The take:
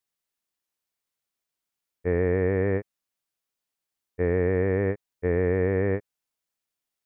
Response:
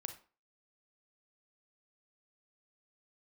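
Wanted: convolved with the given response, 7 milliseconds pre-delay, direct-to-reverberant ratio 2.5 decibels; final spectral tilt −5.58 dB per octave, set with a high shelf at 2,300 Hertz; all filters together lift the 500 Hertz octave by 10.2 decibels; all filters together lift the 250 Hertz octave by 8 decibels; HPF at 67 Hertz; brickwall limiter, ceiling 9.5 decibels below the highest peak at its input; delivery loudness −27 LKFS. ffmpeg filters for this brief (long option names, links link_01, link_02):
-filter_complex "[0:a]highpass=67,equalizer=frequency=250:width_type=o:gain=7.5,equalizer=frequency=500:width_type=o:gain=9,highshelf=frequency=2300:gain=8.5,alimiter=limit=-15dB:level=0:latency=1,asplit=2[link_01][link_02];[1:a]atrim=start_sample=2205,adelay=7[link_03];[link_02][link_03]afir=irnorm=-1:irlink=0,volume=0.5dB[link_04];[link_01][link_04]amix=inputs=2:normalize=0,volume=-4.5dB"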